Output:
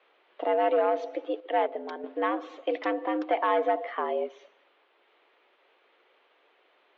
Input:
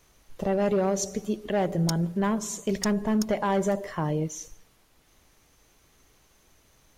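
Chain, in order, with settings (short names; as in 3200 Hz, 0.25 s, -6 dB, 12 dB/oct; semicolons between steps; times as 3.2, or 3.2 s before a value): mistuned SSB +93 Hz 270–3300 Hz; 1.4–2.04 upward expander 1.5:1, over -36 dBFS; gain +1.5 dB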